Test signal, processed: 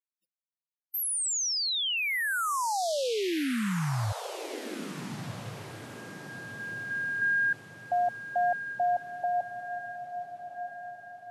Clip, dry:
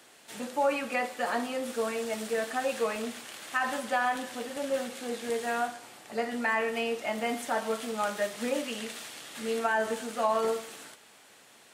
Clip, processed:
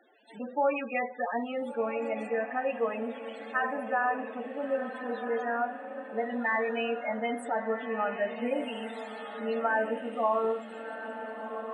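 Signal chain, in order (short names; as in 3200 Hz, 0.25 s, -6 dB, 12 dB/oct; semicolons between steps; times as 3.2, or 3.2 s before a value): loudest bins only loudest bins 16; diffused feedback echo 1.397 s, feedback 45%, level -9 dB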